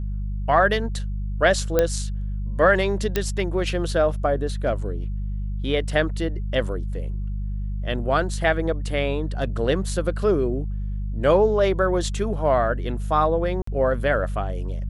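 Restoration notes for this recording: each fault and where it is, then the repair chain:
hum 50 Hz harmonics 4 -27 dBFS
1.79 pop -6 dBFS
3.16 pop -7 dBFS
13.62–13.67 gap 54 ms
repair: de-click; de-hum 50 Hz, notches 4; interpolate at 13.62, 54 ms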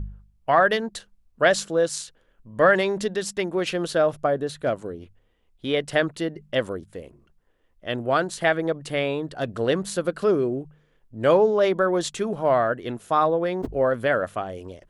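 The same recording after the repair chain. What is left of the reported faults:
none

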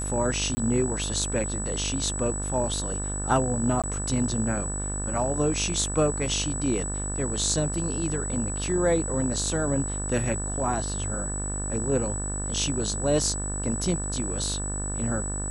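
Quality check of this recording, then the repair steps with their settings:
buzz 50 Hz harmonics 36 -32 dBFS
tone 7900 Hz -32 dBFS
0.55–0.57 gap 20 ms
3.82–3.84 gap 17 ms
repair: de-hum 50 Hz, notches 36; notch 7900 Hz, Q 30; interpolate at 0.55, 20 ms; interpolate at 3.82, 17 ms

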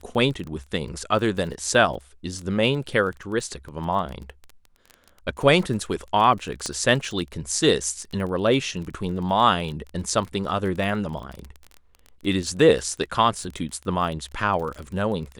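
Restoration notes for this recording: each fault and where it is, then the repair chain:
crackle 21/s -30 dBFS
6.66 pop -14 dBFS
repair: de-click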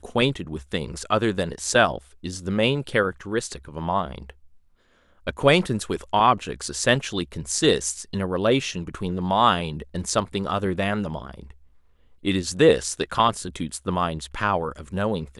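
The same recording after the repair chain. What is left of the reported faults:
none

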